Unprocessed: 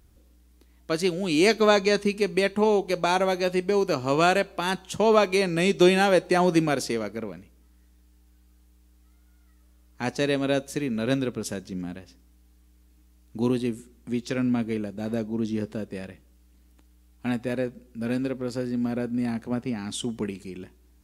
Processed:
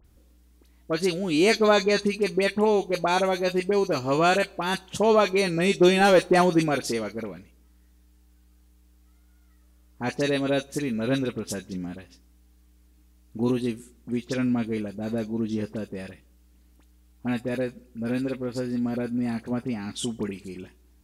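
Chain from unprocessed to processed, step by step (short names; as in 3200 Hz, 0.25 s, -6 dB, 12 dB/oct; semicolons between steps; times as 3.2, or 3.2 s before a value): 6–6.41 sample leveller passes 1; dispersion highs, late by 47 ms, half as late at 1900 Hz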